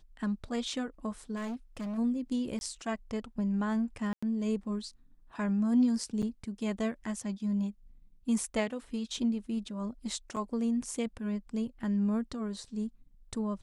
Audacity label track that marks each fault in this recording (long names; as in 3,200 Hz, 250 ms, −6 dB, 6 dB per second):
1.350000	1.990000	clipping −34 dBFS
2.590000	2.610000	drop-out 21 ms
4.130000	4.220000	drop-out 95 ms
6.220000	6.230000	drop-out 6.8 ms
10.360000	10.370000	drop-out 6.3 ms